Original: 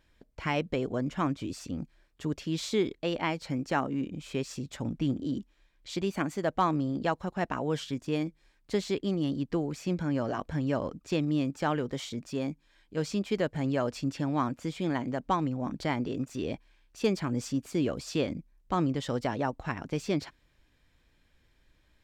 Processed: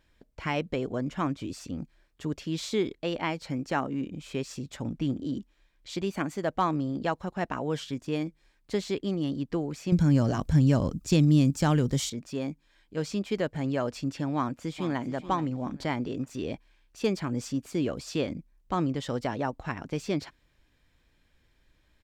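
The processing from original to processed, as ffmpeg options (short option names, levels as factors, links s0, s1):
-filter_complex "[0:a]asettb=1/sr,asplit=3[s0][s1][s2];[s0]atrim=end=9.924[s3];[s1]atrim=start=9.92:end=12.1,asetpts=PTS-STARTPTS,afade=t=in:d=0.004:c=qsin,afade=t=out:st=2.176:d=0.004:c=qsin,bass=f=250:g=14,treble=f=4000:g=14[s4];[s2]atrim=start=12.096[s5];[s3][s4]acrossfade=d=0.004:c1=hsin:c2=qsin[s6];[s6][s5]acrossfade=d=0.004:c1=qsin:c2=hsin,asplit=2[s7][s8];[s8]afade=t=in:st=14.35:d=0.01,afade=t=out:st=15.13:d=0.01,aecho=0:1:430|860|1290:0.237137|0.0592843|0.0148211[s9];[s7][s9]amix=inputs=2:normalize=0"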